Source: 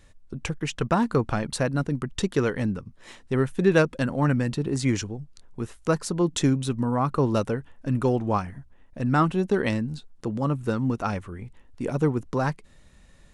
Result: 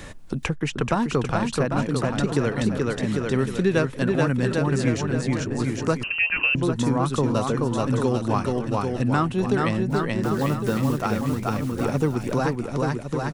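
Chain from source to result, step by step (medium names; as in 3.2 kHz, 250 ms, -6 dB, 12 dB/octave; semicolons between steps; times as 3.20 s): 9.90–11.03 s: block-companded coder 5-bit; bouncing-ball echo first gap 430 ms, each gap 0.85×, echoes 5; 6.03–6.55 s: frequency inversion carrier 2.9 kHz; three bands compressed up and down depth 70%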